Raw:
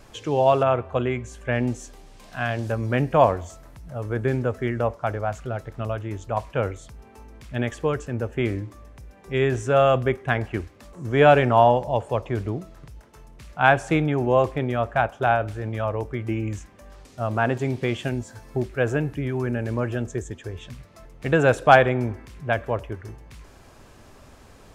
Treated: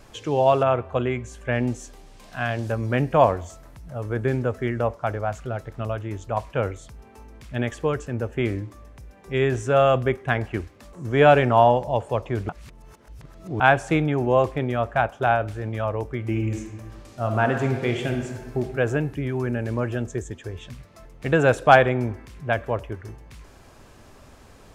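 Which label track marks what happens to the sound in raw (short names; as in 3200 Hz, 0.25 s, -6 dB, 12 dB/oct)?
12.490000	13.600000	reverse
16.190000	18.590000	reverb throw, RT60 1.4 s, DRR 4 dB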